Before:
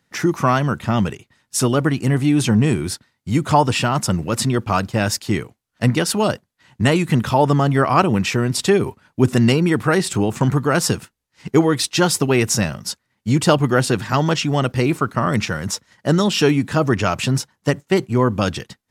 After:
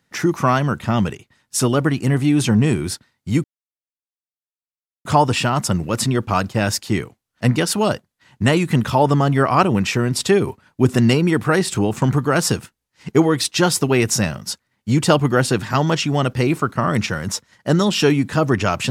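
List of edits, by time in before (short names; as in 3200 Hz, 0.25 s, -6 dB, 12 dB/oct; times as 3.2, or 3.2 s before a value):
3.44 insert silence 1.61 s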